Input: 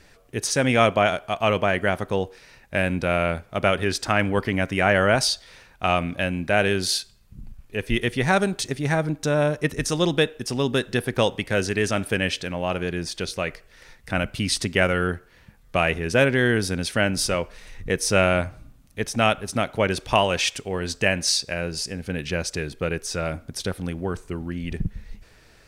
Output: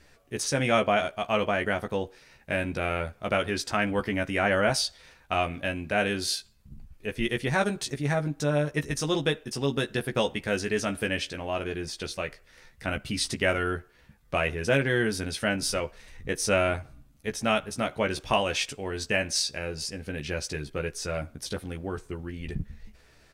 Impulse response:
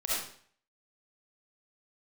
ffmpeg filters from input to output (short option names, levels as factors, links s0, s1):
-filter_complex "[0:a]atempo=1.1,asplit=2[s0][s1];[s1]adelay=14,volume=0.562[s2];[s0][s2]amix=inputs=2:normalize=0,volume=0.501"